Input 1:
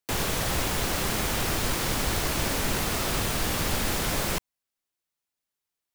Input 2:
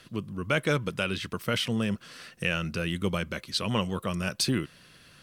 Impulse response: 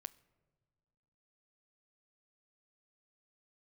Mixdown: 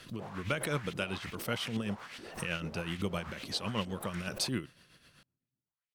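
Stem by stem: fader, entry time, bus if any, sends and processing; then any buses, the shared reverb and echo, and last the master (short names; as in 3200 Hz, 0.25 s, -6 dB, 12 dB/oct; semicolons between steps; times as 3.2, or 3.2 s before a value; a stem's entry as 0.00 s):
+1.0 dB, 0.10 s, send -11 dB, limiter -21 dBFS, peak gain reduction 7 dB; LFO band-pass saw up 2.4 Hz 250–3300 Hz; auto duck -8 dB, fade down 0.40 s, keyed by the second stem
-6.5 dB, 0.00 s, send -11 dB, backwards sustainer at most 120 dB/s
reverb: on, pre-delay 9 ms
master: tremolo 7.9 Hz, depth 52%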